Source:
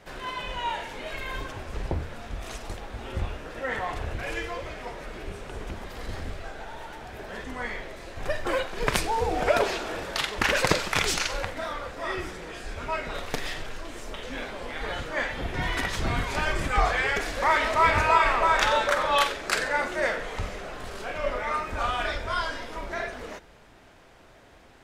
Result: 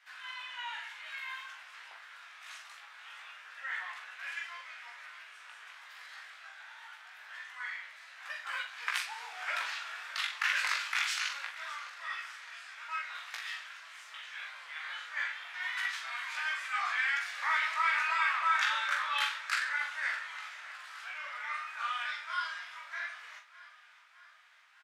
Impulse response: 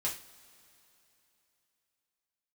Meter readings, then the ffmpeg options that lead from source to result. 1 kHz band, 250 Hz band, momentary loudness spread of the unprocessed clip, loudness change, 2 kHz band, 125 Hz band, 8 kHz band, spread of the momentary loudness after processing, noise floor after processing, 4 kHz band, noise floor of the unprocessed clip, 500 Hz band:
−10.0 dB, below −40 dB, 16 LU, −6.5 dB, −4.0 dB, below −40 dB, −10.0 dB, 20 LU, −57 dBFS, −6.0 dB, −53 dBFS, −30.0 dB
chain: -filter_complex "[0:a]highpass=frequency=1300:width=0.5412,highpass=frequency=1300:width=1.3066,highshelf=frequency=4500:gain=-10.5,flanger=delay=16:depth=3.2:speed=0.24,asplit=2[link_01][link_02];[link_02]adelay=42,volume=-7dB[link_03];[link_01][link_03]amix=inputs=2:normalize=0,asplit=2[link_04][link_05];[link_05]aecho=0:1:610|1220|1830|2440|3050:0.126|0.0718|0.0409|0.0233|0.0133[link_06];[link_04][link_06]amix=inputs=2:normalize=0"

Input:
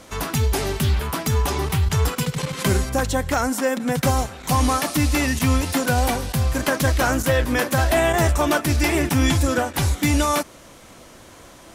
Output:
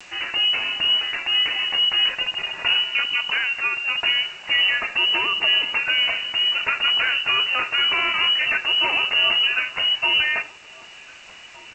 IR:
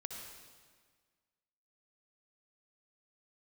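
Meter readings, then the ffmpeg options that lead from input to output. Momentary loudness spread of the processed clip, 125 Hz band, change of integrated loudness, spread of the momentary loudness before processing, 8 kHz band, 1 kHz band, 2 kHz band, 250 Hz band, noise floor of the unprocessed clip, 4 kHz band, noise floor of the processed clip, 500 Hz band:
4 LU, below −30 dB, +2.0 dB, 4 LU, below −20 dB, −6.0 dB, +6.0 dB, −22.5 dB, −45 dBFS, +14.0 dB, −43 dBFS, −15.0 dB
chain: -filter_complex "[0:a]adynamicequalizer=threshold=0.02:dfrequency=630:dqfactor=2.1:tfrequency=630:tqfactor=2.1:attack=5:release=100:ratio=0.375:range=3:mode=cutabove:tftype=bell,lowpass=frequency=2600:width_type=q:width=0.5098,lowpass=frequency=2600:width_type=q:width=0.6013,lowpass=frequency=2600:width_type=q:width=0.9,lowpass=frequency=2600:width_type=q:width=2.563,afreqshift=-3000,aresample=16000,acrusher=bits=7:mix=0:aa=0.000001,aresample=44100,asplit=2[link_01][link_02];[link_02]adelay=1516,volume=-17dB,highshelf=frequency=4000:gain=-34.1[link_03];[link_01][link_03]amix=inputs=2:normalize=0,asplit=2[link_04][link_05];[1:a]atrim=start_sample=2205,atrim=end_sample=3969[link_06];[link_05][link_06]afir=irnorm=-1:irlink=0,volume=-1dB[link_07];[link_04][link_07]amix=inputs=2:normalize=0,acompressor=mode=upward:threshold=-34dB:ratio=2.5,volume=-4.5dB"

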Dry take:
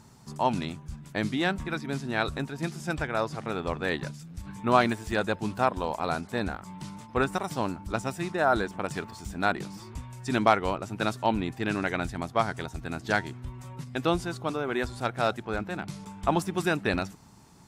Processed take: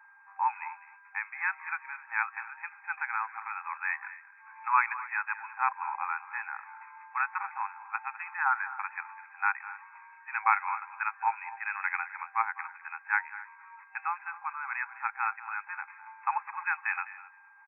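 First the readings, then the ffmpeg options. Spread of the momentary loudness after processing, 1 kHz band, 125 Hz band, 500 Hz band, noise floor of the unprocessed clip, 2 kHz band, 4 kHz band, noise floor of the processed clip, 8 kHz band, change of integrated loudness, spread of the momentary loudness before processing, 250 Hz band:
15 LU, −1.0 dB, below −40 dB, below −40 dB, −49 dBFS, +1.0 dB, below −40 dB, −56 dBFS, below −35 dB, −3.5 dB, 13 LU, below −40 dB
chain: -filter_complex "[0:a]asplit=2[link_01][link_02];[link_02]adelay=256.6,volume=-18dB,highshelf=frequency=4000:gain=-5.77[link_03];[link_01][link_03]amix=inputs=2:normalize=0,afftfilt=real='re*between(b*sr/4096,780,2600)':imag='im*between(b*sr/4096,780,2600)':win_size=4096:overlap=0.75,aeval=exprs='val(0)+0.00178*sin(2*PI*1600*n/s)':channel_layout=same,asplit=2[link_04][link_05];[link_05]aecho=0:1:204:0.158[link_06];[link_04][link_06]amix=inputs=2:normalize=0,adynamicequalizer=threshold=0.01:dfrequency=1900:dqfactor=0.7:tfrequency=1900:tqfactor=0.7:attack=5:release=100:ratio=0.375:range=1.5:mode=boostabove:tftype=highshelf"

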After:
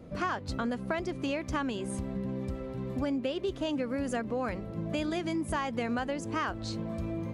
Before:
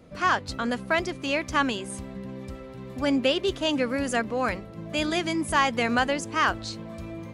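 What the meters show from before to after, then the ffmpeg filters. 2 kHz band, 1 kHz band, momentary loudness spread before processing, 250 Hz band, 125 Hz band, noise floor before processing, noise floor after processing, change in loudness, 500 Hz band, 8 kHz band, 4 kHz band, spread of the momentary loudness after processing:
−11.0 dB, −9.0 dB, 15 LU, −3.5 dB, +0.5 dB, −42 dBFS, −41 dBFS, −7.5 dB, −5.5 dB, −9.0 dB, −12.0 dB, 4 LU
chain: -af "tiltshelf=frequency=970:gain=4.5,acompressor=threshold=-29dB:ratio=6"

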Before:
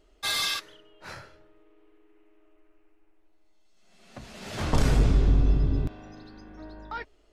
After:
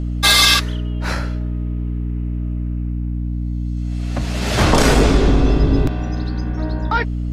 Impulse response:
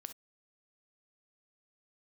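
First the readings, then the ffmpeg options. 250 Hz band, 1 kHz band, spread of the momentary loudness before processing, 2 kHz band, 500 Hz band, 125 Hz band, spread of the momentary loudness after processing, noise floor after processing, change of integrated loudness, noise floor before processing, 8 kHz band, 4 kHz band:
+14.5 dB, +15.5 dB, 23 LU, +16.0 dB, +15.5 dB, +10.5 dB, 12 LU, −23 dBFS, +8.5 dB, −62 dBFS, +15.5 dB, +15.5 dB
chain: -filter_complex "[0:a]acrossover=split=230|520|6500[link_01][link_02][link_03][link_04];[link_01]acompressor=threshold=-30dB:ratio=6[link_05];[link_05][link_02][link_03][link_04]amix=inputs=4:normalize=0,aeval=exprs='val(0)+0.0141*(sin(2*PI*60*n/s)+sin(2*PI*2*60*n/s)/2+sin(2*PI*3*60*n/s)/3+sin(2*PI*4*60*n/s)/4+sin(2*PI*5*60*n/s)/5)':channel_layout=same,alimiter=level_in=17.5dB:limit=-1dB:release=50:level=0:latency=1,volume=-1dB"

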